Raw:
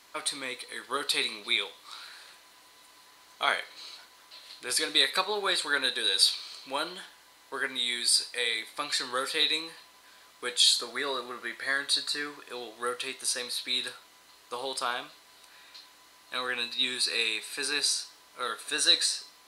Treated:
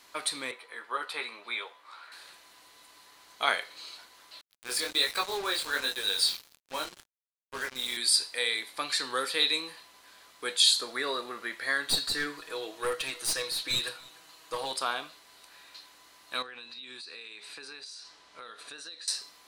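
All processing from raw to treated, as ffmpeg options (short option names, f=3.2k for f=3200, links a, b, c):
-filter_complex "[0:a]asettb=1/sr,asplit=3[a][b][c];[a]atrim=end=0.514[d];[b]atrim=start=0.51:end=2.12,asetpts=PTS-STARTPTS,afade=t=in:d=0.004:c=qsin,afade=t=out:st=1.606:d=0.004:c=qsin,acrossover=split=480 2200:gain=0.2 1 0.158[e][f][g];[e][f][g]amix=inputs=3:normalize=0,asplit=2[h][i];[i]adelay=13,volume=-6dB[j];[h][j]amix=inputs=2:normalize=0,atrim=end_sample=71001[k];[c]atrim=start=2.116[l];[d][k]acrossfade=d=0.004:c1=hsin:c2=qsin[m];[m][l]acrossfade=d=0.004:c1=qsin:c2=hsin,asettb=1/sr,asplit=3[n][o][p];[n]atrim=end=4.414[q];[o]atrim=start=4.41:end=7.97,asetpts=PTS-STARTPTS,afade=t=in:d=0.004:c=qsin,afade=t=out:st=3.556:d=0.004:c=qsin,equalizer=f=110:t=o:w=1.6:g=-7.5,flanger=delay=18.5:depth=6.3:speed=1.3,acrusher=bits=5:mix=0:aa=0.5[r];[p]atrim=start=7.966[s];[q][r]acrossfade=d=0.004:c1=hsin:c2=qsin[t];[t][s]acrossfade=d=0.004:c1=qsin:c2=hsin,asettb=1/sr,asplit=3[u][v][w];[u]atrim=end=11.874[x];[v]atrim=start=11.87:end=14.72,asetpts=PTS-STARTPTS,afade=t=in:d=0.004:c=qsin,afade=t=out:st=2.846:d=0.004:c=qsin,aecho=1:1:6.3:0.77,atrim=end_sample=125685,aeval=exprs='clip(val(0),-1,0.0335)':c=same,aecho=1:1:292:0.0631,atrim=end_sample=125685[y];[w]atrim=start=14.716[z];[x][y]acrossfade=d=0.004:c1=hsin:c2=qsin[aa];[aa][z]acrossfade=d=0.004:c1=qsin:c2=hsin,asettb=1/sr,asplit=3[ab][ac][ad];[ab]atrim=end=16.424[ae];[ac]atrim=start=16.42:end=19.08,asetpts=PTS-STARTPTS,afade=t=in:d=0.004:c=qsin,afade=t=out:st=2.656:d=0.004:c=qsin,lowpass=6.2k,acompressor=threshold=-41dB:ratio=10:attack=3.2:release=140:knee=1:detection=peak[af];[ad]atrim=start=19.076[ag];[ae][af]acrossfade=d=0.004:c1=hsin:c2=qsin[ah];[ah][ag]acrossfade=d=0.004:c1=qsin:c2=hsin"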